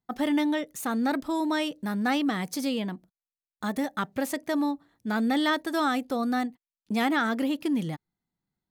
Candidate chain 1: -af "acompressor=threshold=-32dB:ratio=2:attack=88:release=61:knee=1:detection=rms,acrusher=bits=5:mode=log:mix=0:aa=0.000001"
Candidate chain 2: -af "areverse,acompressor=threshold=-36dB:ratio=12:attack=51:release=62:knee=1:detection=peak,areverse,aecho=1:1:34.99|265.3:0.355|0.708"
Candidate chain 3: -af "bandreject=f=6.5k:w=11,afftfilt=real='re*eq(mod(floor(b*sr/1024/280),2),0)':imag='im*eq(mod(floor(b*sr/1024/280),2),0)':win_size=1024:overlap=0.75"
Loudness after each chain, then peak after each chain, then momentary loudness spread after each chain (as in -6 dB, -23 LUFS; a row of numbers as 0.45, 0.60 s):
-30.5, -34.0, -31.5 LUFS; -18.5, -20.0, -16.5 dBFS; 6, 7, 8 LU